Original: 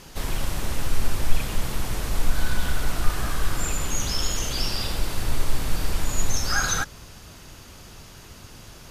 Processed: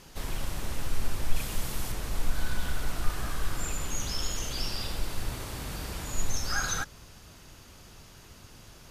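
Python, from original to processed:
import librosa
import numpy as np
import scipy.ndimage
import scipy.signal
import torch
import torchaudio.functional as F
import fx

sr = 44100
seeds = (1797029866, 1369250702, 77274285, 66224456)

y = fx.high_shelf(x, sr, hz=4800.0, db=6.5, at=(1.36, 1.92))
y = fx.highpass(y, sr, hz=46.0, slope=12, at=(5.29, 6.14))
y = y * 10.0 ** (-6.5 / 20.0)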